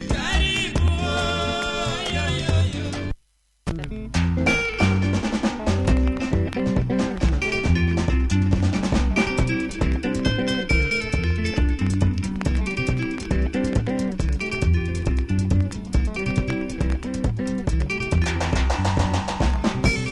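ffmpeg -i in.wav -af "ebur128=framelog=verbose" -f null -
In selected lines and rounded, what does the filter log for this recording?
Integrated loudness:
  I:         -22.8 LUFS
  Threshold: -32.8 LUFS
Loudness range:
  LRA:         2.3 LU
  Threshold: -42.9 LUFS
  LRA low:   -24.1 LUFS
  LRA high:  -21.8 LUFS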